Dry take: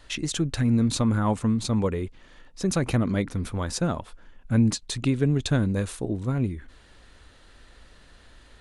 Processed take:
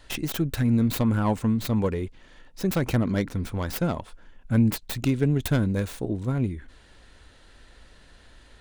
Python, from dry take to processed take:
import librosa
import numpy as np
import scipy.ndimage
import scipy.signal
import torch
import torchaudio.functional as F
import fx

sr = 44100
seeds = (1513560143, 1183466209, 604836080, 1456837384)

y = fx.tracing_dist(x, sr, depth_ms=0.26)
y = fx.notch(y, sr, hz=1200.0, q=14.0)